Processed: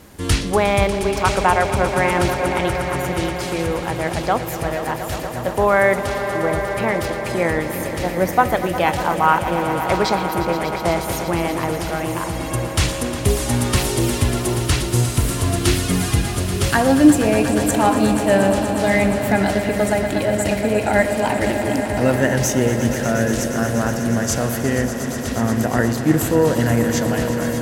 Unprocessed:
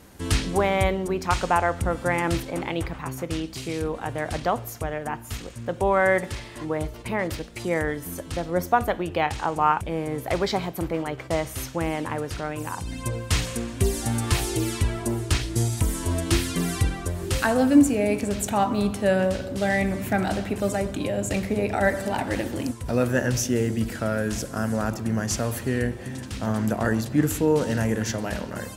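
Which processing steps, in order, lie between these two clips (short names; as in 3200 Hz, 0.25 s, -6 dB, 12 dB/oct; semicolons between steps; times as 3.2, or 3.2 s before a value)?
swelling echo 0.124 s, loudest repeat 5, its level -13 dB; speed mistake 24 fps film run at 25 fps; gain +5 dB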